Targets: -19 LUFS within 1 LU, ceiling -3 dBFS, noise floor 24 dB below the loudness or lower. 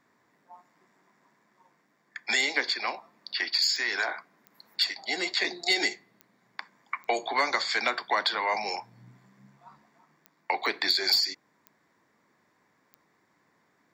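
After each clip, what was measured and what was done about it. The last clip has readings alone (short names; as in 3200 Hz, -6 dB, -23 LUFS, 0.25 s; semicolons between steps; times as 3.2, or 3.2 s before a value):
clicks 8; loudness -27.0 LUFS; peak -11.5 dBFS; loudness target -19.0 LUFS
-> de-click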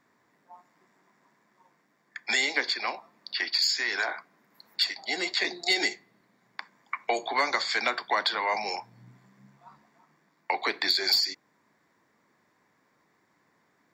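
clicks 0; loudness -27.0 LUFS; peak -11.5 dBFS; loudness target -19.0 LUFS
-> gain +8 dB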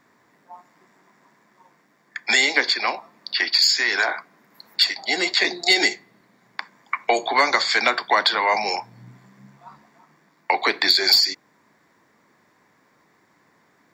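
loudness -19.0 LUFS; peak -3.5 dBFS; noise floor -62 dBFS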